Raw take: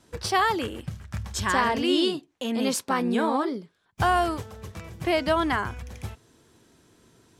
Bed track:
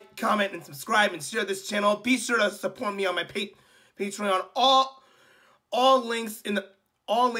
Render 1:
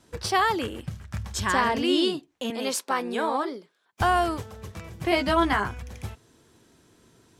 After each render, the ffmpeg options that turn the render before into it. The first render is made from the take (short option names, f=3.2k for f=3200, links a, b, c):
-filter_complex "[0:a]asettb=1/sr,asplit=3[a][b][c];[a]atrim=end=2.504[d];[b]atrim=start=2.5:end=4.01,asetpts=PTS-STARTPTS,afade=t=in:d=0.004:c=qsin,afade=t=out:st=1.506:d=0.004:c=qsin,highpass=370[e];[c]atrim=start=4.006[f];[d][e]acrossfade=d=0.004:c1=hsin:c2=qsin[g];[g][f]acrossfade=d=0.004:c1=qsin:c2=hsin,asettb=1/sr,asplit=3[h][i][j];[h]atrim=end=5.104[k];[i]atrim=start=5.1:end=5.68,asetpts=PTS-STARTPTS,afade=t=in:d=0.004:c=qsin,afade=t=out:st=0.576:d=0.004:c=qsin,asplit=2[l][m];[m]adelay=15,volume=-3dB[n];[l][n]amix=inputs=2:normalize=0,atrim=end_sample=25578[o];[j]atrim=start=5.676[p];[k][o]acrossfade=d=0.004:c1=hsin:c2=qsin[q];[q][p]acrossfade=d=0.004:c1=qsin:c2=hsin"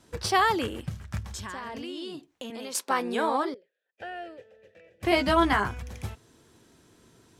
-filter_complex "[0:a]asettb=1/sr,asplit=3[a][b][c];[a]atrim=end=1.194[d];[b]atrim=start=1.19:end=2.75,asetpts=PTS-STARTPTS,afade=t=in:d=0.004:c=qsin,afade=t=out:st=1.556:d=0.004:c=qsin,acompressor=threshold=-34dB:ratio=8:attack=3.2:release=140:knee=1:detection=peak[e];[c]atrim=start=2.746[f];[d][e]acrossfade=d=0.004:c1=hsin:c2=qsin[g];[g][f]acrossfade=d=0.004:c1=qsin:c2=hsin,asettb=1/sr,asplit=3[h][i][j];[h]atrim=end=3.544[k];[i]atrim=start=3.54:end=5.03,asetpts=PTS-STARTPTS,afade=t=in:d=0.004:c=qsin,afade=t=out:st=1.486:d=0.004:c=qsin,asplit=3[l][m][n];[l]bandpass=f=530:t=q:w=8,volume=0dB[o];[m]bandpass=f=1.84k:t=q:w=8,volume=-6dB[p];[n]bandpass=f=2.48k:t=q:w=8,volume=-9dB[q];[o][p][q]amix=inputs=3:normalize=0[r];[j]atrim=start=5.026[s];[k][r]acrossfade=d=0.004:c1=hsin:c2=qsin[t];[t][s]acrossfade=d=0.004:c1=qsin:c2=hsin"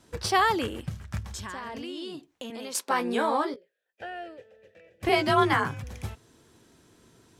-filter_complex "[0:a]asettb=1/sr,asplit=3[a][b][c];[a]atrim=end=2.894[d];[b]atrim=start=2.89:end=4.06,asetpts=PTS-STARTPTS,afade=t=in:d=0.004:c=qsin,afade=t=out:st=1.166:d=0.004:c=qsin,asplit=2[e][f];[f]adelay=17,volume=-8dB[g];[e][g]amix=inputs=2:normalize=0,atrim=end_sample=51597[h];[c]atrim=start=4.056[i];[d][h]acrossfade=d=0.004:c1=hsin:c2=qsin[j];[j][i]acrossfade=d=0.004:c1=qsin:c2=hsin,asettb=1/sr,asplit=3[k][l][m];[k]atrim=end=5.094[n];[l]atrim=start=5.09:end=5.84,asetpts=PTS-STARTPTS,afade=t=in:d=0.004:c=qsin,afade=t=out:st=0.746:d=0.004:c=qsin,afreqshift=40[o];[m]atrim=start=5.836[p];[n][o]acrossfade=d=0.004:c1=hsin:c2=qsin[q];[q][p]acrossfade=d=0.004:c1=qsin:c2=hsin"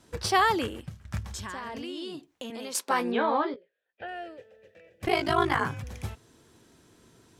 -filter_complex "[0:a]asplit=3[a][b][c];[a]afade=t=out:st=3.1:d=0.02[d];[b]lowpass=f=3.8k:w=0.5412,lowpass=f=3.8k:w=1.3066,afade=t=in:st=3.1:d=0.02,afade=t=out:st=4.07:d=0.02[e];[c]afade=t=in:st=4.07:d=0.02[f];[d][e][f]amix=inputs=3:normalize=0,asettb=1/sr,asplit=3[g][h][i];[g]atrim=end=5.054[j];[h]atrim=start=5.05:end=5.61,asetpts=PTS-STARTPTS,afade=t=in:d=0.004:c=qsin,afade=t=out:st=0.556:d=0.004:c=qsin,aeval=exprs='val(0)*sin(2*PI*26*n/s)':c=same[k];[i]atrim=start=5.606[l];[j][k]acrossfade=d=0.004:c1=hsin:c2=qsin[m];[m][l]acrossfade=d=0.004:c1=qsin:c2=hsin,asplit=2[n][o];[n]atrim=end=1.05,asetpts=PTS-STARTPTS,afade=t=out:st=0.59:d=0.46:silence=0.223872[p];[o]atrim=start=1.05,asetpts=PTS-STARTPTS,afade=t=in:d=0.004:c=hsin:silence=0.223872[q];[p][q]concat=n=2:v=0:a=1"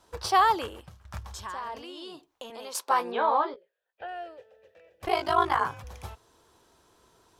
-af "equalizer=f=125:t=o:w=1:g=-10,equalizer=f=250:t=o:w=1:g=-10,equalizer=f=1k:t=o:w=1:g=6,equalizer=f=2k:t=o:w=1:g=-6,equalizer=f=8k:t=o:w=1:g=-4"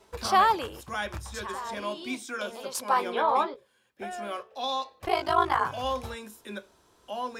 -filter_complex "[1:a]volume=-11dB[a];[0:a][a]amix=inputs=2:normalize=0"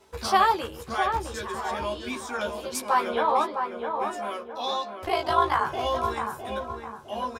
-filter_complex "[0:a]asplit=2[a][b];[b]adelay=13,volume=-5dB[c];[a][c]amix=inputs=2:normalize=0,asplit=2[d][e];[e]adelay=659,lowpass=f=1.6k:p=1,volume=-5dB,asplit=2[f][g];[g]adelay=659,lowpass=f=1.6k:p=1,volume=0.43,asplit=2[h][i];[i]adelay=659,lowpass=f=1.6k:p=1,volume=0.43,asplit=2[j][k];[k]adelay=659,lowpass=f=1.6k:p=1,volume=0.43,asplit=2[l][m];[m]adelay=659,lowpass=f=1.6k:p=1,volume=0.43[n];[d][f][h][j][l][n]amix=inputs=6:normalize=0"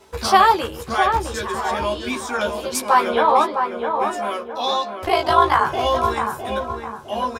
-af "volume=7.5dB,alimiter=limit=-2dB:level=0:latency=1"